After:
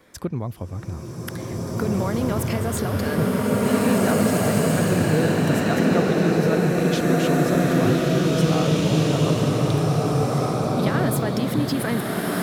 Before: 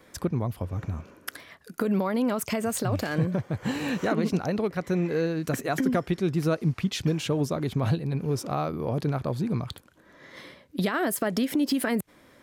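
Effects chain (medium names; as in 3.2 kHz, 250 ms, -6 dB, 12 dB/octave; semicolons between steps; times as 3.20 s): swelling reverb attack 1990 ms, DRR -7 dB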